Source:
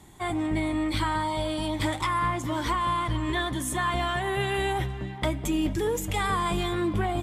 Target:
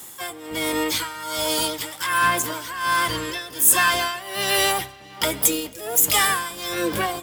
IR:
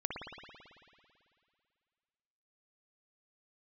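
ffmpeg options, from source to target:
-filter_complex "[0:a]tremolo=f=1.3:d=0.83,aemphasis=mode=production:type=riaa,asplit=2[a][b];[b]asetrate=66075,aresample=44100,atempo=0.66742,volume=-3dB[c];[a][c]amix=inputs=2:normalize=0,asplit=2[d][e];[1:a]atrim=start_sample=2205,asetrate=70560,aresample=44100[f];[e][f]afir=irnorm=-1:irlink=0,volume=-17dB[g];[d][g]amix=inputs=2:normalize=0,volume=5.5dB"

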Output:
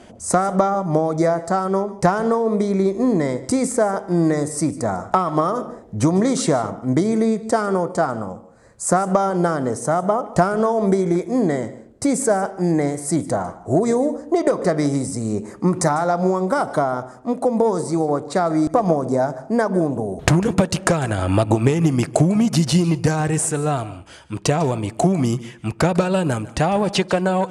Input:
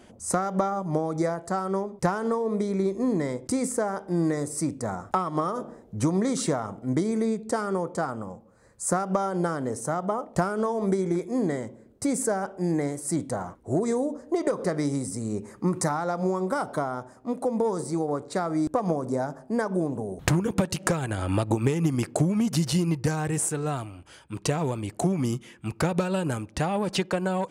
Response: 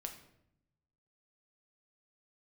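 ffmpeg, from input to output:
-filter_complex "[0:a]lowpass=9.9k,equalizer=f=670:w=5.2:g=5,asplit=2[a][b];[1:a]atrim=start_sample=2205,atrim=end_sample=4410,adelay=149[c];[b][c]afir=irnorm=-1:irlink=0,volume=-14.5dB[d];[a][d]amix=inputs=2:normalize=0,volume=7dB"

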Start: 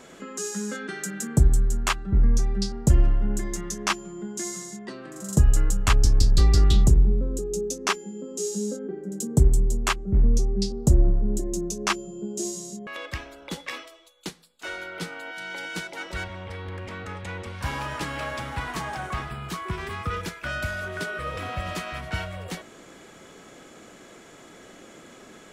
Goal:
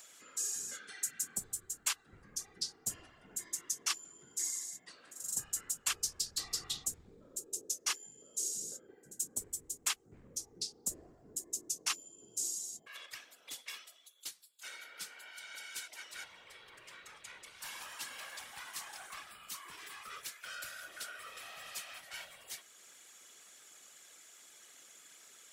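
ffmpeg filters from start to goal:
-af "aderivative,acompressor=mode=upward:threshold=-51dB:ratio=2.5,afftfilt=real='hypot(re,im)*cos(2*PI*random(0))':imag='hypot(re,im)*sin(2*PI*random(1))':win_size=512:overlap=0.75,volume=4dB"

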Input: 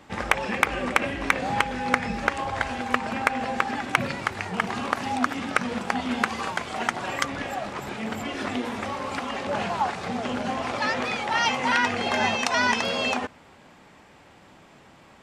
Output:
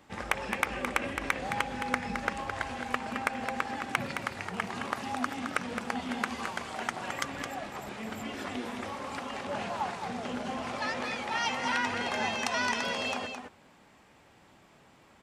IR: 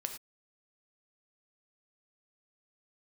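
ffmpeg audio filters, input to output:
-filter_complex "[0:a]highshelf=f=9.9k:g=7,asplit=2[a][b];[b]aecho=0:1:216:0.447[c];[a][c]amix=inputs=2:normalize=0,volume=-8dB"

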